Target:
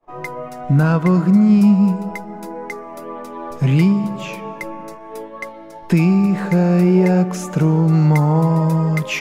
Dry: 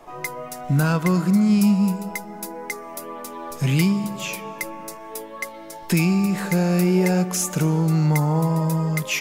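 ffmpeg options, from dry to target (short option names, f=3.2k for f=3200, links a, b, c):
-af "asetnsamples=n=441:p=0,asendcmd='7.93 lowpass f 2200',lowpass=f=1.3k:p=1,agate=range=-33dB:threshold=-36dB:ratio=3:detection=peak,volume=5.5dB"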